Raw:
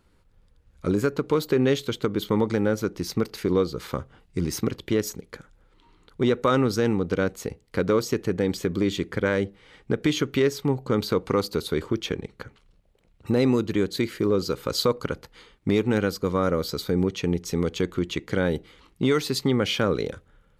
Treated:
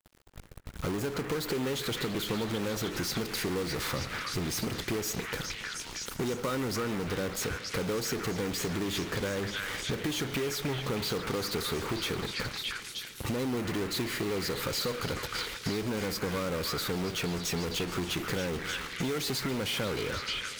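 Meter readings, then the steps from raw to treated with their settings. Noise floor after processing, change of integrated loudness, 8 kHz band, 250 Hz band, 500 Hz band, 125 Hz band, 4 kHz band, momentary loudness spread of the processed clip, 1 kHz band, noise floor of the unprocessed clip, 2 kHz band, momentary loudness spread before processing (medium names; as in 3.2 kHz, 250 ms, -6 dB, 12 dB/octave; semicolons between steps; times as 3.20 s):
-43 dBFS, -7.0 dB, +2.0 dB, -9.0 dB, -9.5 dB, -7.0 dB, 0.0 dB, 3 LU, -5.0 dB, -61 dBFS, -1.5 dB, 11 LU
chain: in parallel at -10 dB: fuzz box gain 50 dB, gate -54 dBFS; on the sum: companded quantiser 4-bit; repeats whose band climbs or falls 310 ms, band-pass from 1.7 kHz, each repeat 0.7 oct, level -1 dB; compression 4:1, threshold -25 dBFS, peak gain reduction 10 dB; modulated delay 142 ms, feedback 80%, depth 130 cents, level -19 dB; trim -6 dB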